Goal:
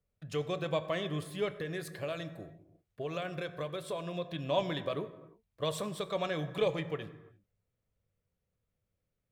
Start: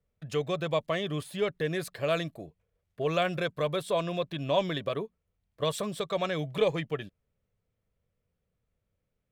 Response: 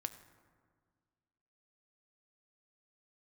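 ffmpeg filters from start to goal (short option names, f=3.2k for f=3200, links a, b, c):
-filter_complex "[0:a]asettb=1/sr,asplit=3[a][b][c];[a]atrim=end=1.574[d];[b]atrim=start=1.57:end=4.31,asetpts=PTS-STARTPTS,afade=t=in:d=0.004:c=qsin,afade=t=out:st=2.736:d=0.004:c=qsin,acompressor=threshold=-30dB:ratio=6[e];[c]atrim=start=4.306[f];[d][e]acrossfade=d=0.004:c1=hsin:c2=qsin[g];[g][f]acrossfade=d=0.004:c1=qsin:c2=hsin[h];[1:a]atrim=start_sample=2205,afade=t=out:st=0.41:d=0.01,atrim=end_sample=18522[i];[h][i]afir=irnorm=-1:irlink=0,volume=-2dB"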